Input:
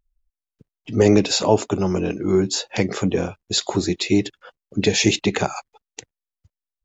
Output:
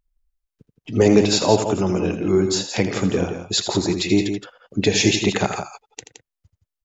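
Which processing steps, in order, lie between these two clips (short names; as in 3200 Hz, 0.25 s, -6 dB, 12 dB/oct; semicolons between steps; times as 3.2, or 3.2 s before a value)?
loudspeakers at several distances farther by 28 m -10 dB, 58 m -9 dB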